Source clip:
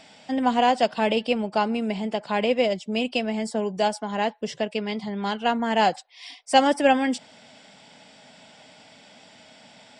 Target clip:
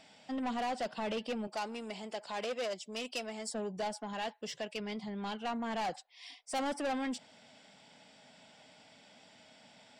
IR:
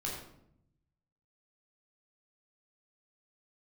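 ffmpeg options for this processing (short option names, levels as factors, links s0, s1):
-filter_complex "[0:a]asettb=1/sr,asplit=3[s0][s1][s2];[s0]atrim=end=4.134[s3];[s1]atrim=start=4.13:end=4.8,asetpts=PTS-STARTPTS,afade=t=in:d=0.004:c=qsin,afade=t=out:st=0.666:d=0.004:c=qsin,tiltshelf=f=830:g=-4.5[s4];[s2]atrim=start=4.796[s5];[s3][s4]acrossfade=d=0.004:c1=hsin:c2=qsin[s6];[s6][s5]acrossfade=d=0.004:c1=qsin:c2=hsin,asoftclip=type=tanh:threshold=0.0794,asettb=1/sr,asplit=3[s7][s8][s9];[s7]atrim=end=1.474[s10];[s8]atrim=start=1.47:end=3.54,asetpts=PTS-STARTPTS,afade=t=in:d=0.004:c=qsin,afade=t=out:st=2.066:d=0.004:c=qsin,bass=f=250:g=-13,treble=f=4000:g=8[s11];[s9]atrim=start=3.536[s12];[s10][s11]acrossfade=d=0.004:c1=hsin:c2=qsin[s13];[s13][s12]acrossfade=d=0.004:c1=qsin:c2=hsin,volume=0.355"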